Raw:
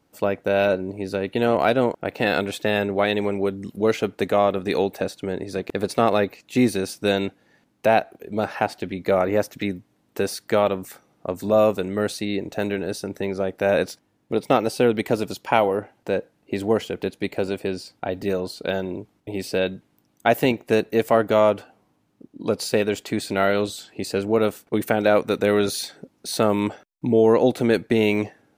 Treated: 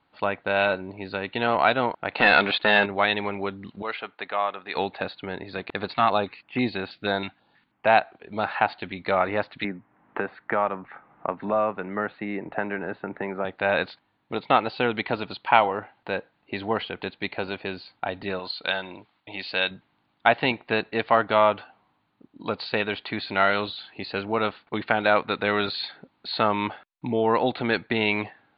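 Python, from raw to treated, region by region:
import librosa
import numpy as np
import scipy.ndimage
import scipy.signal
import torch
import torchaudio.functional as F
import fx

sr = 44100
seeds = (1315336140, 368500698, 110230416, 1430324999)

y = fx.chain(x, sr, fx.peak_eq(hz=87.0, db=-11.5, octaves=0.89),
    fx.leveller(passes=2), at=(2.14, 2.86))
y = fx.chain(y, sr, fx.highpass(hz=1100.0, slope=6),
    fx.high_shelf(hz=3100.0, db=-10.5), at=(3.82, 4.76))
y = fx.chain(y, sr, fx.peak_eq(hz=720.0, db=2.5, octaves=0.38),
    fx.filter_held_notch(hz=6.2, low_hz=460.0, high_hz=5700.0), at=(5.94, 7.87))
y = fx.chain(y, sr, fx.lowpass(hz=2000.0, slope=24),
    fx.peak_eq(hz=93.0, db=-12.0, octaves=0.36),
    fx.band_squash(depth_pct=70), at=(9.64, 13.45))
y = fx.chain(y, sr, fx.lowpass(hz=11000.0, slope=12),
    fx.tilt_eq(slope=2.5),
    fx.notch(hz=400.0, q=8.8), at=(18.39, 19.71))
y = scipy.signal.sosfilt(scipy.signal.butter(16, 4400.0, 'lowpass', fs=sr, output='sos'), y)
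y = fx.low_shelf_res(y, sr, hz=670.0, db=-8.0, q=1.5)
y = y * librosa.db_to_amplitude(2.0)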